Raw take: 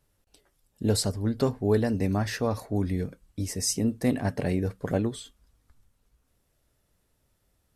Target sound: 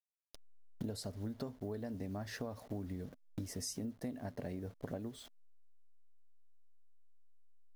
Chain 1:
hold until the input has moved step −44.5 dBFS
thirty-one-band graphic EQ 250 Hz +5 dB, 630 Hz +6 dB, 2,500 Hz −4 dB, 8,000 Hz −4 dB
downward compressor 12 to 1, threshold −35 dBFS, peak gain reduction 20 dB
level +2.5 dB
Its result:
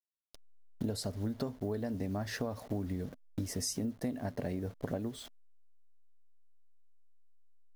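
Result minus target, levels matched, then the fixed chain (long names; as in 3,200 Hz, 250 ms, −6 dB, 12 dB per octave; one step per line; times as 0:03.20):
downward compressor: peak gain reduction −6 dB
hold until the input has moved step −44.5 dBFS
thirty-one-band graphic EQ 250 Hz +5 dB, 630 Hz +6 dB, 2,500 Hz −4 dB, 8,000 Hz −4 dB
downward compressor 12 to 1, threshold −41.5 dBFS, peak gain reduction 25.5 dB
level +2.5 dB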